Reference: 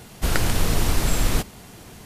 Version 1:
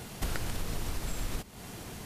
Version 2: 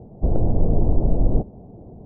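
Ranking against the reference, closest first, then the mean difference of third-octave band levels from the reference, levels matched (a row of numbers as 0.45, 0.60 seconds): 1, 2; 5.5, 19.5 decibels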